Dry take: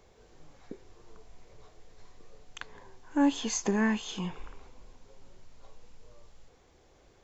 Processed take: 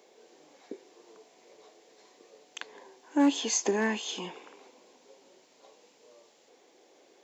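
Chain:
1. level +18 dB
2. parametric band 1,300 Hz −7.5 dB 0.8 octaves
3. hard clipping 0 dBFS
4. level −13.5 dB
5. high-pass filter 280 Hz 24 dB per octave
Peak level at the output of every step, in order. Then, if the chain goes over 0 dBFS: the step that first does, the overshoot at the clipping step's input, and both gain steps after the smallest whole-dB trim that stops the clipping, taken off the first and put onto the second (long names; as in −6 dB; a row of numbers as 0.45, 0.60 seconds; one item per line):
+3.5, +3.0, 0.0, −13.5, −15.5 dBFS
step 1, 3.0 dB
step 1 +15 dB, step 4 −10.5 dB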